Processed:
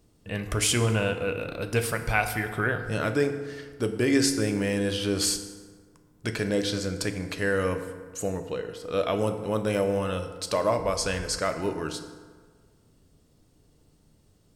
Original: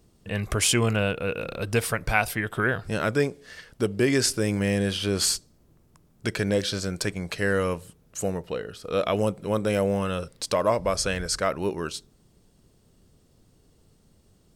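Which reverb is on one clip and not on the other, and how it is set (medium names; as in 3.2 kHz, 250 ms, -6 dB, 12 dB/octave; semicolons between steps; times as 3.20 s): FDN reverb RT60 1.6 s, low-frequency decay 1×, high-frequency decay 0.55×, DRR 6.5 dB; trim -2.5 dB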